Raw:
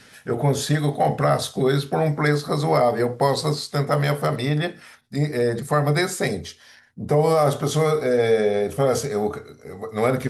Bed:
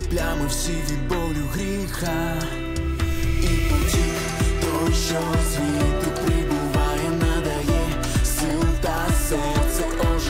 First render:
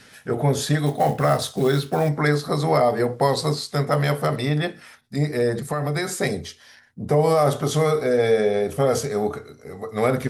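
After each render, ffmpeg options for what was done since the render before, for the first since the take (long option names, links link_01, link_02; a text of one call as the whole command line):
ffmpeg -i in.wav -filter_complex "[0:a]asettb=1/sr,asplit=3[link_01][link_02][link_03];[link_01]atrim=end=0.864[link_04];[link_02]atrim=start=0.86:end=2.09,asetpts=PTS-STARTPTS,afade=type=in:duration=0.004:curve=qsin,afade=type=out:start_time=1.226:duration=0.004:curve=qsin,acrusher=bits=6:mode=log:mix=0:aa=0.000001[link_05];[link_03]atrim=start=2.086[link_06];[link_04][link_05]acrossfade=duration=0.004:curve1=hsin:curve2=qsin[link_07];[link_07][link_06]acrossfade=duration=0.004:curve1=qsin:curve2=hsin,asettb=1/sr,asplit=3[link_08][link_09][link_10];[link_08]atrim=end=5.674[link_11];[link_09]atrim=start=5.67:end=6.16,asetpts=PTS-STARTPTS,afade=type=in:duration=0.004:curve=qsin,afade=type=out:start_time=0.486:duration=0.004:curve=qsin,acompressor=threshold=-20dB:ratio=6:attack=3.2:release=140:knee=1:detection=peak[link_12];[link_10]atrim=start=6.156[link_13];[link_11][link_12]acrossfade=duration=0.004:curve1=hsin:curve2=qsin[link_14];[link_14][link_13]acrossfade=duration=0.004:curve1=qsin:curve2=hsin" out.wav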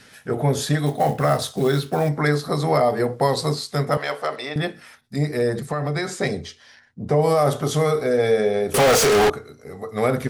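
ffmpeg -i in.wav -filter_complex "[0:a]asettb=1/sr,asplit=3[link_01][link_02][link_03];[link_01]atrim=end=3.974[link_04];[link_02]atrim=start=3.97:end=4.56,asetpts=PTS-STARTPTS,afade=type=in:duration=0.004:curve=qsin,afade=type=out:start_time=0.586:duration=0.004:curve=qsin,highpass=520,lowpass=6600[link_05];[link_03]atrim=start=4.556[link_06];[link_04][link_05]acrossfade=duration=0.004:curve1=hsin:curve2=qsin[link_07];[link_07][link_06]acrossfade=duration=0.004:curve1=qsin:curve2=hsin,asettb=1/sr,asplit=3[link_08][link_09][link_10];[link_08]atrim=end=5.654[link_11];[link_09]atrim=start=5.65:end=7.22,asetpts=PTS-STARTPTS,afade=type=in:duration=0.004:curve=qsin,afade=type=out:start_time=1.566:duration=0.004:curve=qsin,lowpass=6900[link_12];[link_10]atrim=start=7.216[link_13];[link_11][link_12]acrossfade=duration=0.004:curve1=hsin:curve2=qsin[link_14];[link_14][link_13]acrossfade=duration=0.004:curve1=qsin:curve2=hsin,asettb=1/sr,asplit=3[link_15][link_16][link_17];[link_15]atrim=end=8.744[link_18];[link_16]atrim=start=8.74:end=9.3,asetpts=PTS-STARTPTS,afade=type=in:duration=0.004:curve=qsin,afade=type=out:start_time=0.556:duration=0.004:curve=qsin,asplit=2[link_19][link_20];[link_20]highpass=frequency=720:poles=1,volume=39dB,asoftclip=type=tanh:threshold=-9.5dB[link_21];[link_19][link_21]amix=inputs=2:normalize=0,lowpass=frequency=6700:poles=1,volume=-6dB[link_22];[link_17]atrim=start=9.296[link_23];[link_18][link_22]acrossfade=duration=0.004:curve1=hsin:curve2=qsin[link_24];[link_24][link_23]acrossfade=duration=0.004:curve1=qsin:curve2=hsin" out.wav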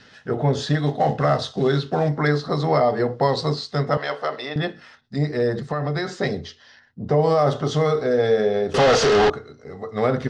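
ffmpeg -i in.wav -af "lowpass=frequency=5500:width=0.5412,lowpass=frequency=5500:width=1.3066,bandreject=frequency=2300:width=8.1" out.wav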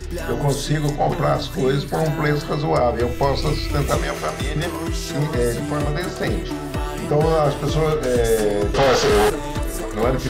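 ffmpeg -i in.wav -i bed.wav -filter_complex "[1:a]volume=-4.5dB[link_01];[0:a][link_01]amix=inputs=2:normalize=0" out.wav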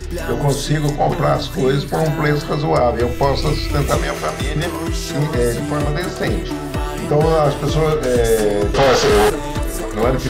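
ffmpeg -i in.wav -af "volume=3dB" out.wav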